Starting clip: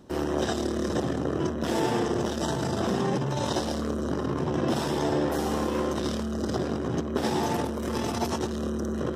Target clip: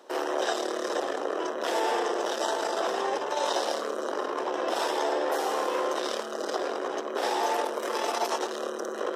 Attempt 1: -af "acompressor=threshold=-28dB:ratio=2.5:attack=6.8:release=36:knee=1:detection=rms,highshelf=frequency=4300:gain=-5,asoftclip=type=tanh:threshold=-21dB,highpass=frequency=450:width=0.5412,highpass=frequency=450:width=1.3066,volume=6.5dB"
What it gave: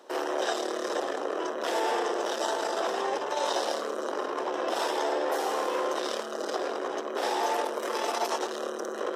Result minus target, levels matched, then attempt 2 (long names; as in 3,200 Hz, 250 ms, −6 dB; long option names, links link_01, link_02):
soft clipping: distortion +15 dB
-af "acompressor=threshold=-28dB:ratio=2.5:attack=6.8:release=36:knee=1:detection=rms,highshelf=frequency=4300:gain=-5,asoftclip=type=tanh:threshold=-12.5dB,highpass=frequency=450:width=0.5412,highpass=frequency=450:width=1.3066,volume=6.5dB"